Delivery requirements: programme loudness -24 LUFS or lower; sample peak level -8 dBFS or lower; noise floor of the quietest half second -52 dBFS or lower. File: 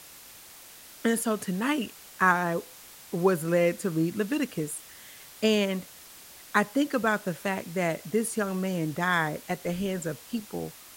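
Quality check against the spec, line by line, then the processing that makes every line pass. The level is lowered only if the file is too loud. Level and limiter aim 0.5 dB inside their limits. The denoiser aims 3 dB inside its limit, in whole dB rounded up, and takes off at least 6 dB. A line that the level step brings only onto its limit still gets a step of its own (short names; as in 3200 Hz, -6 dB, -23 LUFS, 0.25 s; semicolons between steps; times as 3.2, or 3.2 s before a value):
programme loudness -28.5 LUFS: OK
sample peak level -7.0 dBFS: fail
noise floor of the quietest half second -49 dBFS: fail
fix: denoiser 6 dB, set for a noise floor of -49 dBFS; limiter -8.5 dBFS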